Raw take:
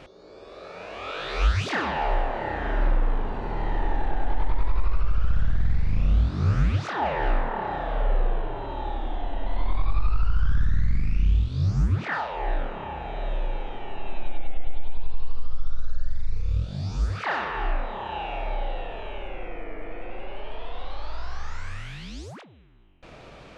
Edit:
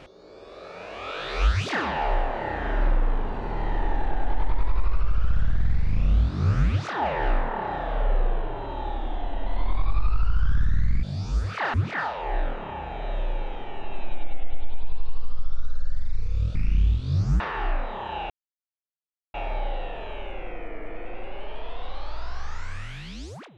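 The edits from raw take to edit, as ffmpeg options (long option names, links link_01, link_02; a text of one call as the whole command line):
ffmpeg -i in.wav -filter_complex "[0:a]asplit=6[link_01][link_02][link_03][link_04][link_05][link_06];[link_01]atrim=end=11.032[link_07];[link_02]atrim=start=16.688:end=17.402[link_08];[link_03]atrim=start=11.878:end=16.692[link_09];[link_04]atrim=start=11.028:end=11.882[link_10];[link_05]atrim=start=17.398:end=18.3,asetpts=PTS-STARTPTS,afade=type=out:start_time=0.898:duration=0.004:curve=hsin,apad=pad_dur=1.04[link_11];[link_06]atrim=start=18.3,asetpts=PTS-STARTPTS,afade=type=in:duration=0.004:curve=hsin[link_12];[link_07][link_08]acrossfade=duration=0.004:curve1=hsin:curve2=hsin[link_13];[link_13][link_09]acrossfade=duration=0.004:curve1=hsin:curve2=hsin[link_14];[link_14][link_10]acrossfade=duration=0.004:curve1=hsin:curve2=hsin[link_15];[link_11][link_12]concat=n=2:v=0:a=1[link_16];[link_15][link_16]acrossfade=duration=0.004:curve1=hsin:curve2=hsin" out.wav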